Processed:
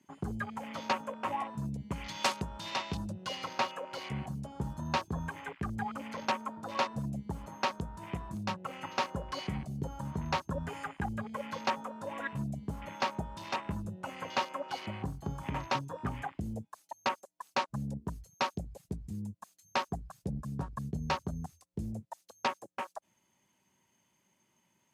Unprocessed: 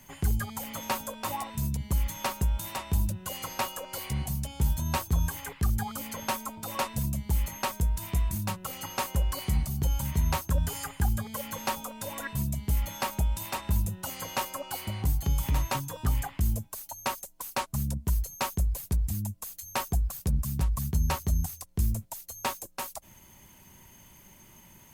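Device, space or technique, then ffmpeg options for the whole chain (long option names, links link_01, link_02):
over-cleaned archive recording: -filter_complex "[0:a]asettb=1/sr,asplit=3[link_01][link_02][link_03];[link_01]atrim=end=1.914[link_04];[link_02]atrim=start=1.91:end=3.35,asetpts=PTS-STARTPTS,afade=type=in:duration=0.004:curve=qsin,afade=type=out:start_time=1.436:duration=0.004:curve=qsin,equalizer=frequency=4600:width_type=o:width=2.2:gain=5.5[link_05];[link_03]atrim=start=3.346[link_06];[link_04][link_05]acrossfade=duration=0.004:curve1=hsin:curve2=qsin[link_07];[link_07][link_06]acrossfade=duration=0.004:curve1=qsin:curve2=hsin,highpass=170,lowpass=8000,afwtdn=0.00631"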